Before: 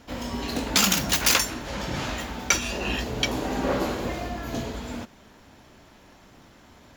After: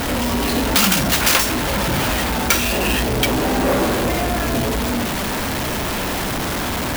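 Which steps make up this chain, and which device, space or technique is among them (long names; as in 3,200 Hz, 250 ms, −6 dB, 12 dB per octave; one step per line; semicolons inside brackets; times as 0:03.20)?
early CD player with a faulty converter (converter with a step at zero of −19 dBFS; converter with an unsteady clock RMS 0.032 ms)
level +2.5 dB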